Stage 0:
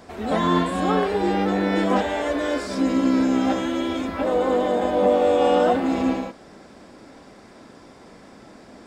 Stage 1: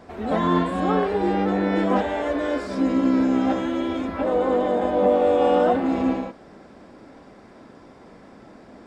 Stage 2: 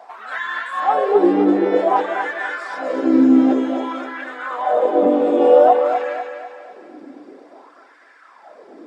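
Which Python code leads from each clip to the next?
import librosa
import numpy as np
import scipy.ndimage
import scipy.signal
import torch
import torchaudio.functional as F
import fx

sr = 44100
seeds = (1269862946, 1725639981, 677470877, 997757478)

y1 = fx.high_shelf(x, sr, hz=3500.0, db=-11.0)
y2 = fx.dereverb_blind(y1, sr, rt60_s=0.53)
y2 = fx.filter_lfo_highpass(y2, sr, shape='sine', hz=0.53, low_hz=280.0, high_hz=1700.0, q=5.5)
y2 = fx.echo_thinned(y2, sr, ms=249, feedback_pct=45, hz=170.0, wet_db=-7.0)
y2 = y2 * 10.0 ** (-1.0 / 20.0)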